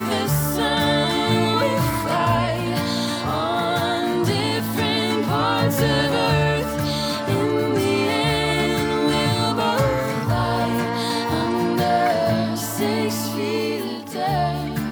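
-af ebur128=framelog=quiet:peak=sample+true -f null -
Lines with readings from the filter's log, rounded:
Integrated loudness:
  I:         -20.8 LUFS
  Threshold: -30.8 LUFS
Loudness range:
  LRA:         1.4 LU
  Threshold: -40.7 LUFS
  LRA low:   -21.6 LUFS
  LRA high:  -20.1 LUFS
Sample peak:
  Peak:       -6.5 dBFS
True peak:
  Peak:       -6.4 dBFS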